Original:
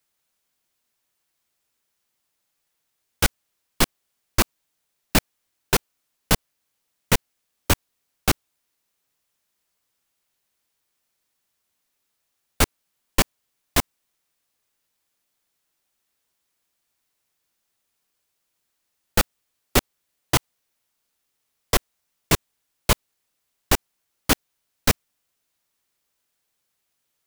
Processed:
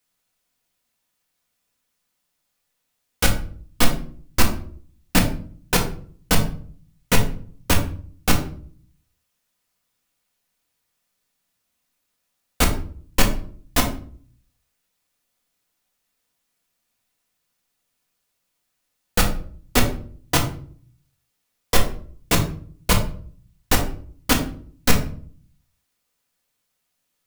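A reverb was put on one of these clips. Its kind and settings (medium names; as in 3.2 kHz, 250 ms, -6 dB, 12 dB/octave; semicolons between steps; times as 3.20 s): simulated room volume 500 m³, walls furnished, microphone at 1.9 m; trim -1 dB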